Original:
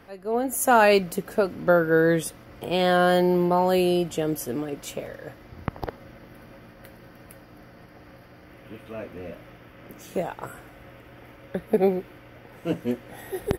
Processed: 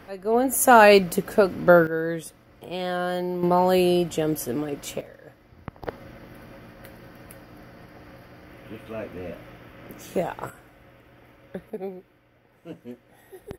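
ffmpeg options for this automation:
ffmpeg -i in.wav -af "asetnsamples=nb_out_samples=441:pad=0,asendcmd='1.87 volume volume -7.5dB;3.43 volume volume 1.5dB;5.01 volume volume -8dB;5.86 volume volume 2dB;10.5 volume volume -5.5dB;11.7 volume volume -13dB',volume=4dB" out.wav

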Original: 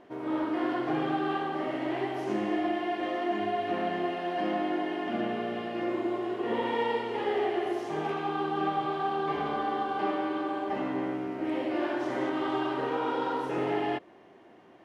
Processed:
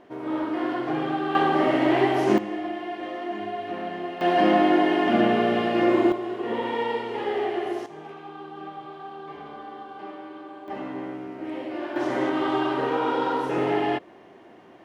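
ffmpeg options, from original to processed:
ffmpeg -i in.wav -af "asetnsamples=nb_out_samples=441:pad=0,asendcmd='1.35 volume volume 11dB;2.38 volume volume -1.5dB;4.21 volume volume 11dB;6.12 volume volume 2dB;7.86 volume volume -9dB;10.68 volume volume -2dB;11.96 volume volume 5.5dB',volume=2.5dB" out.wav

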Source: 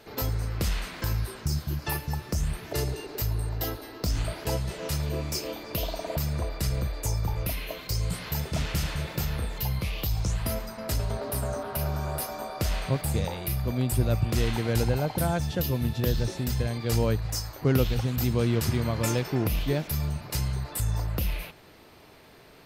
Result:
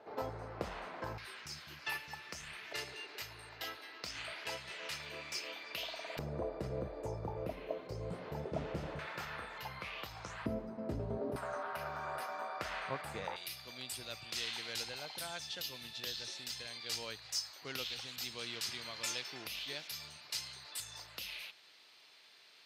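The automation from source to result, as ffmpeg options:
ffmpeg -i in.wav -af "asetnsamples=nb_out_samples=441:pad=0,asendcmd='1.18 bandpass f 2400;6.19 bandpass f 480;8.99 bandpass f 1400;10.46 bandpass f 310;11.36 bandpass f 1400;13.36 bandpass f 4000',bandpass=frequency=730:width_type=q:width=1.3:csg=0" out.wav

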